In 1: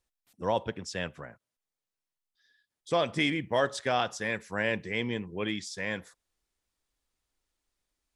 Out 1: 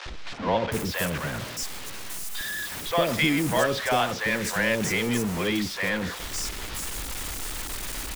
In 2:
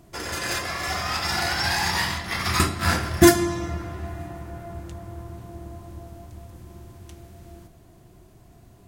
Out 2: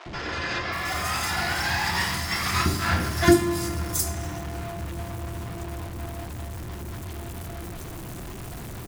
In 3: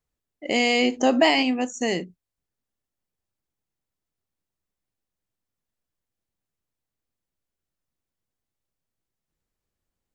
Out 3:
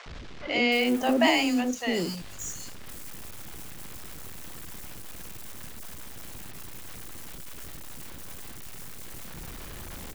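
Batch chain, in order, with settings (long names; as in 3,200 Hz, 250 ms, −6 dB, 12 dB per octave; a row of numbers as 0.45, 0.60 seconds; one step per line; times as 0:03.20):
converter with a step at zero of −29 dBFS
three-band delay without the direct sound mids, lows, highs 60/720 ms, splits 560/4,900 Hz
loudness normalisation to −27 LKFS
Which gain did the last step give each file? +3.5, −2.0, −3.0 decibels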